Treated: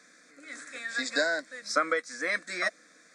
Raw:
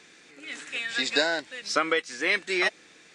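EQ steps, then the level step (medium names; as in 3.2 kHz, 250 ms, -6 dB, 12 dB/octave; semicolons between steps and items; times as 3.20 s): bass shelf 120 Hz -11 dB; static phaser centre 580 Hz, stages 8; 0.0 dB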